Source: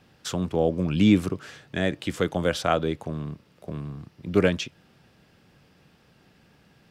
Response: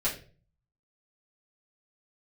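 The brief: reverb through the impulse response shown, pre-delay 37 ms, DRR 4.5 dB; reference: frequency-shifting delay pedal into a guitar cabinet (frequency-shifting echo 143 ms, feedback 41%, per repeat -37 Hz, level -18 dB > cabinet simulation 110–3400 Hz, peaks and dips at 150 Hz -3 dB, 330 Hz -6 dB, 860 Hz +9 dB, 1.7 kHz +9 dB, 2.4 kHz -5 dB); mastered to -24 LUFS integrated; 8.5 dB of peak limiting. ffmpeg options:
-filter_complex "[0:a]alimiter=limit=0.178:level=0:latency=1,asplit=2[s0][s1];[1:a]atrim=start_sample=2205,adelay=37[s2];[s1][s2]afir=irnorm=-1:irlink=0,volume=0.251[s3];[s0][s3]amix=inputs=2:normalize=0,asplit=4[s4][s5][s6][s7];[s5]adelay=143,afreqshift=-37,volume=0.126[s8];[s6]adelay=286,afreqshift=-74,volume=0.0519[s9];[s7]adelay=429,afreqshift=-111,volume=0.0211[s10];[s4][s8][s9][s10]amix=inputs=4:normalize=0,highpass=110,equalizer=f=150:t=q:w=4:g=-3,equalizer=f=330:t=q:w=4:g=-6,equalizer=f=860:t=q:w=4:g=9,equalizer=f=1700:t=q:w=4:g=9,equalizer=f=2400:t=q:w=4:g=-5,lowpass=f=3400:w=0.5412,lowpass=f=3400:w=1.3066,volume=1.58"

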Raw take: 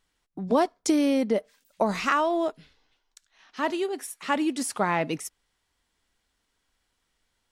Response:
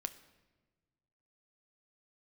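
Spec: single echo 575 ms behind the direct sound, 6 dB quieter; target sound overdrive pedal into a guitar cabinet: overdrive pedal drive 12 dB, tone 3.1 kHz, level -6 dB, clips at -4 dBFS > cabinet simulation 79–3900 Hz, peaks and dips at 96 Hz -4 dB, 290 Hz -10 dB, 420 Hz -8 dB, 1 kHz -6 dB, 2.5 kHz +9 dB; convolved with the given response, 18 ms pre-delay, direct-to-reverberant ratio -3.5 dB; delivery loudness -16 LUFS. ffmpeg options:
-filter_complex "[0:a]aecho=1:1:575:0.501,asplit=2[s0][s1];[1:a]atrim=start_sample=2205,adelay=18[s2];[s1][s2]afir=irnorm=-1:irlink=0,volume=1.78[s3];[s0][s3]amix=inputs=2:normalize=0,asplit=2[s4][s5];[s5]highpass=f=720:p=1,volume=3.98,asoftclip=type=tanh:threshold=0.631[s6];[s4][s6]amix=inputs=2:normalize=0,lowpass=f=3100:p=1,volume=0.501,highpass=79,equalizer=f=96:t=q:w=4:g=-4,equalizer=f=290:t=q:w=4:g=-10,equalizer=f=420:t=q:w=4:g=-8,equalizer=f=1000:t=q:w=4:g=-6,equalizer=f=2500:t=q:w=4:g=9,lowpass=f=3900:w=0.5412,lowpass=f=3900:w=1.3066,volume=1.68"

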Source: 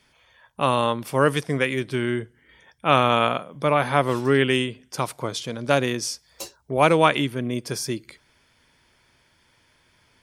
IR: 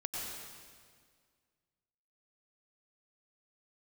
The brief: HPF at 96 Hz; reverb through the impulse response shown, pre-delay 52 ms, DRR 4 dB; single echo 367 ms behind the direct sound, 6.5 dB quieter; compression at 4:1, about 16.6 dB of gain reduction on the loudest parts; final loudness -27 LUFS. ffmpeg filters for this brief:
-filter_complex "[0:a]highpass=96,acompressor=threshold=0.0224:ratio=4,aecho=1:1:367:0.473,asplit=2[s0][s1];[1:a]atrim=start_sample=2205,adelay=52[s2];[s1][s2]afir=irnorm=-1:irlink=0,volume=0.501[s3];[s0][s3]amix=inputs=2:normalize=0,volume=2.24"

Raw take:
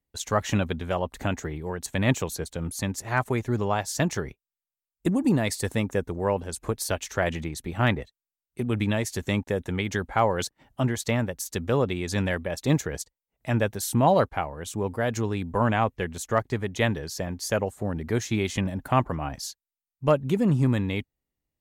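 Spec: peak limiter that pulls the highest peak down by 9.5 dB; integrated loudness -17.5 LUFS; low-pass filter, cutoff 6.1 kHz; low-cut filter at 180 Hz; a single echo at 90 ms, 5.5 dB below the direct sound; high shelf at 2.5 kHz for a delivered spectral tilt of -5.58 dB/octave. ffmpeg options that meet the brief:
-af "highpass=180,lowpass=6100,highshelf=f=2500:g=-6.5,alimiter=limit=0.141:level=0:latency=1,aecho=1:1:90:0.531,volume=4.47"

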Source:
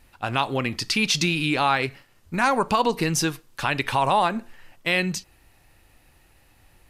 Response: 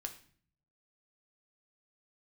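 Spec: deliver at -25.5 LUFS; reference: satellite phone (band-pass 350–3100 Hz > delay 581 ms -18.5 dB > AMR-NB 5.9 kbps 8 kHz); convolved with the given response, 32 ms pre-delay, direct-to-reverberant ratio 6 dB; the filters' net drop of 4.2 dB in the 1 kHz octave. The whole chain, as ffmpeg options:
-filter_complex "[0:a]equalizer=f=1000:t=o:g=-5,asplit=2[s0][s1];[1:a]atrim=start_sample=2205,adelay=32[s2];[s1][s2]afir=irnorm=-1:irlink=0,volume=0.631[s3];[s0][s3]amix=inputs=2:normalize=0,highpass=350,lowpass=3100,aecho=1:1:581:0.119,volume=1.33" -ar 8000 -c:a libopencore_amrnb -b:a 5900

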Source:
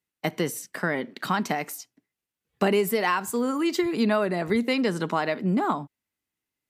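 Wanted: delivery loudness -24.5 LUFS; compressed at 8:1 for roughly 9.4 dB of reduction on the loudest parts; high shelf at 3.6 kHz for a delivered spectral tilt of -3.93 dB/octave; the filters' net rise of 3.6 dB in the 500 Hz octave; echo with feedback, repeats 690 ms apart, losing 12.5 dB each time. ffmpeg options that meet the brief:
-af "equalizer=f=500:t=o:g=4.5,highshelf=f=3600:g=8.5,acompressor=threshold=0.0562:ratio=8,aecho=1:1:690|1380|2070:0.237|0.0569|0.0137,volume=1.88"

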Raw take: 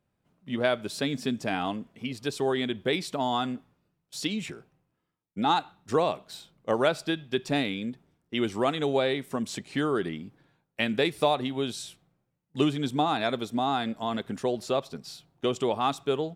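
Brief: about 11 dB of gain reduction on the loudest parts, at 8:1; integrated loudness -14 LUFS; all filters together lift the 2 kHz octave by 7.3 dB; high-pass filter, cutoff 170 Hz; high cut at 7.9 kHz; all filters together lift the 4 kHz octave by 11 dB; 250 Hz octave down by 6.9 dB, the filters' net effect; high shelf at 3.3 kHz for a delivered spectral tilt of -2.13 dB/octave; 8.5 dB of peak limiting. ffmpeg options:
-af "highpass=170,lowpass=7900,equalizer=f=250:t=o:g=-8,equalizer=f=2000:t=o:g=5.5,highshelf=f=3300:g=4,equalizer=f=4000:t=o:g=9,acompressor=threshold=0.0447:ratio=8,volume=9.44,alimiter=limit=0.944:level=0:latency=1"

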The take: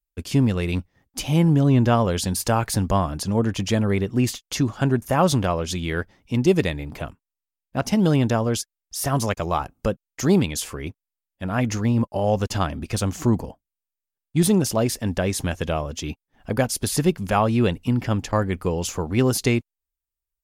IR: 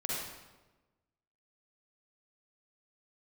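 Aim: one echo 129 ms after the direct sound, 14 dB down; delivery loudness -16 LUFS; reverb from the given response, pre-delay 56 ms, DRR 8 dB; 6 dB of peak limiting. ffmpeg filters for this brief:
-filter_complex "[0:a]alimiter=limit=0.237:level=0:latency=1,aecho=1:1:129:0.2,asplit=2[s0][s1];[1:a]atrim=start_sample=2205,adelay=56[s2];[s1][s2]afir=irnorm=-1:irlink=0,volume=0.237[s3];[s0][s3]amix=inputs=2:normalize=0,volume=2.37"

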